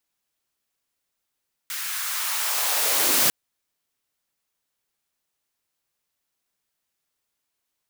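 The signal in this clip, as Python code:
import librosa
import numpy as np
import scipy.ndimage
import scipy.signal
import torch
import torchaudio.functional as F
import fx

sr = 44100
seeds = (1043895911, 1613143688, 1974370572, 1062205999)

y = fx.riser_noise(sr, seeds[0], length_s=1.6, colour='white', kind='highpass', start_hz=1600.0, end_hz=120.0, q=1.6, swell_db=12.5, law='linear')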